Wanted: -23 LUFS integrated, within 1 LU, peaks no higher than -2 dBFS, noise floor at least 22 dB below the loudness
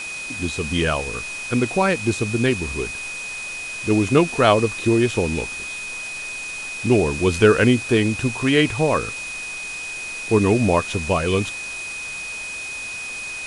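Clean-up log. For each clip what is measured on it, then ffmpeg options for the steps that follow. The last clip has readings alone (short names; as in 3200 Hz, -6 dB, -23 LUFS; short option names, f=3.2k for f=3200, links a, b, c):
steady tone 2500 Hz; tone level -29 dBFS; noise floor -31 dBFS; noise floor target -44 dBFS; loudness -21.5 LUFS; peak -2.0 dBFS; loudness target -23.0 LUFS
-> -af "bandreject=f=2.5k:w=30"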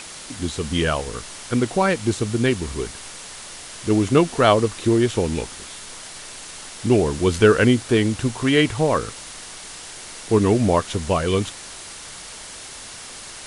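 steady tone none; noise floor -38 dBFS; noise floor target -43 dBFS
-> -af "afftdn=nr=6:nf=-38"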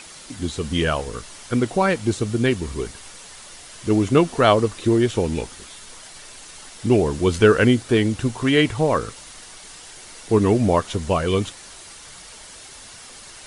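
noise floor -42 dBFS; noise floor target -43 dBFS
-> -af "afftdn=nr=6:nf=-42"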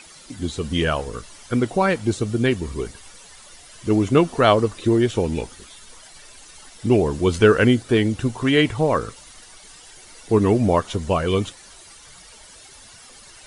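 noise floor -46 dBFS; loudness -20.5 LUFS; peak -2.5 dBFS; loudness target -23.0 LUFS
-> -af "volume=-2.5dB"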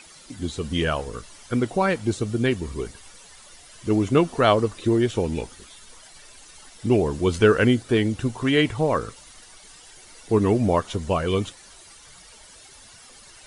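loudness -23.0 LUFS; peak -5.0 dBFS; noise floor -48 dBFS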